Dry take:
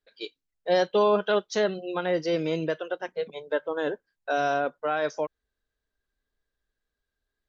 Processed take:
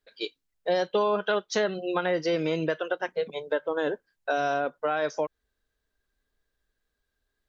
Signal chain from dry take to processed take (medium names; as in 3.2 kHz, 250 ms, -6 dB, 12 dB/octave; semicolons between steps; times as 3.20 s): 0.87–3.13 s: dynamic bell 1.5 kHz, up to +4 dB, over -38 dBFS, Q 0.7; compression 3:1, threshold -28 dBFS, peak gain reduction 9.5 dB; trim +4 dB